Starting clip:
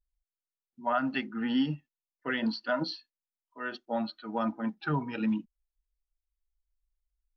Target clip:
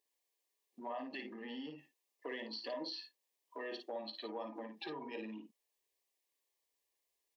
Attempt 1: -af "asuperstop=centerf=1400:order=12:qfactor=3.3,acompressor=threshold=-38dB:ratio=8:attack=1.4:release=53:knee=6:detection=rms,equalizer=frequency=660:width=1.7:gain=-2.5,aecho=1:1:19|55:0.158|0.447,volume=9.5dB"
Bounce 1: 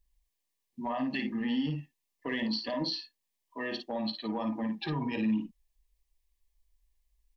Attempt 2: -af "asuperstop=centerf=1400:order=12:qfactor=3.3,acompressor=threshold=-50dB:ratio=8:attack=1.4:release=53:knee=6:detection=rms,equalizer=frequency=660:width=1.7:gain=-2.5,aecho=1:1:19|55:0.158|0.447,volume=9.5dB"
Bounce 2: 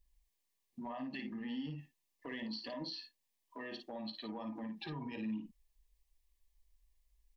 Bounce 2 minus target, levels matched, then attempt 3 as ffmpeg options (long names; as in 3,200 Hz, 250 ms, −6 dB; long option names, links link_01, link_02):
500 Hz band −6.0 dB
-af "asuperstop=centerf=1400:order=12:qfactor=3.3,acompressor=threshold=-50dB:ratio=8:attack=1.4:release=53:knee=6:detection=rms,highpass=frequency=420:width_type=q:width=1.9,equalizer=frequency=660:width=1.7:gain=-2.5,aecho=1:1:19|55:0.158|0.447,volume=9.5dB"